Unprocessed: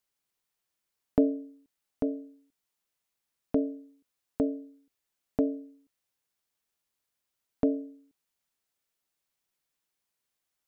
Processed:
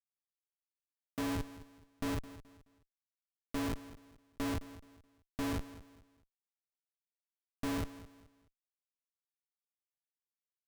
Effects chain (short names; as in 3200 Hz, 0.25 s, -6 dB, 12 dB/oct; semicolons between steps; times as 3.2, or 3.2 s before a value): low shelf 470 Hz -4 dB; Schmitt trigger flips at -39 dBFS; feedback echo 0.213 s, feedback 32%, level -16 dB; gain +4.5 dB